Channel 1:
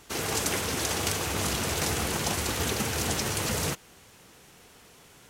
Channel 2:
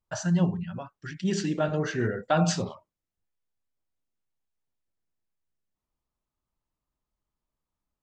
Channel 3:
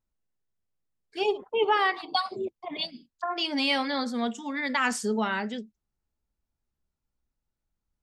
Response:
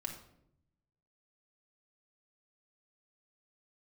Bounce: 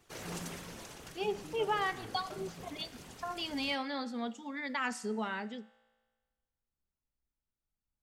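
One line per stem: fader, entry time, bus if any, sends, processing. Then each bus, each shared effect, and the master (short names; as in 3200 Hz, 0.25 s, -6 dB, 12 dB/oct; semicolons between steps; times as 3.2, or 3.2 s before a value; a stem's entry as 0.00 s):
-9.0 dB, 0.00 s, no send, whisperiser; auto duck -9 dB, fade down 0.80 s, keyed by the third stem
-15.5 dB, 0.00 s, no send, compressor, threshold -25 dBFS, peak gain reduction 7 dB
-4.5 dB, 0.00 s, no send, dry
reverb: off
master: high shelf 5700 Hz -4.5 dB; resonator 57 Hz, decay 1.4 s, harmonics all, mix 40%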